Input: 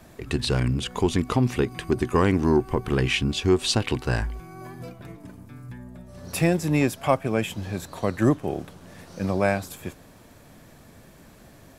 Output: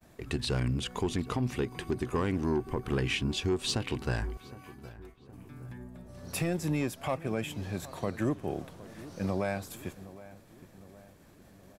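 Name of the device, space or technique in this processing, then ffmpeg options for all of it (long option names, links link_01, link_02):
soft clipper into limiter: -filter_complex "[0:a]asoftclip=type=tanh:threshold=-10.5dB,alimiter=limit=-16.5dB:level=0:latency=1:release=232,asettb=1/sr,asplit=3[link_01][link_02][link_03];[link_01]atrim=end=4.374[link_04];[link_02]atrim=start=4.37:end=5.32,asetpts=PTS-STARTPTS,afade=type=in:duration=0.004:curve=qsin,afade=type=out:start_time=0.946:duration=0.004:curve=qsin,highpass=990[link_05];[link_03]atrim=start=5.316[link_06];[link_04][link_05]acrossfade=duration=0.004:curve1=hsin:curve2=qsin[link_07];[link_07][link_06]acrossfade=duration=0.004:curve1=qsin:curve2=hsin,agate=range=-33dB:threshold=-45dB:ratio=3:detection=peak,asplit=2[link_08][link_09];[link_09]adelay=766,lowpass=frequency=1700:poles=1,volume=-17dB,asplit=2[link_10][link_11];[link_11]adelay=766,lowpass=frequency=1700:poles=1,volume=0.54,asplit=2[link_12][link_13];[link_13]adelay=766,lowpass=frequency=1700:poles=1,volume=0.54,asplit=2[link_14][link_15];[link_15]adelay=766,lowpass=frequency=1700:poles=1,volume=0.54,asplit=2[link_16][link_17];[link_17]adelay=766,lowpass=frequency=1700:poles=1,volume=0.54[link_18];[link_08][link_10][link_12][link_14][link_16][link_18]amix=inputs=6:normalize=0,volume=-5dB"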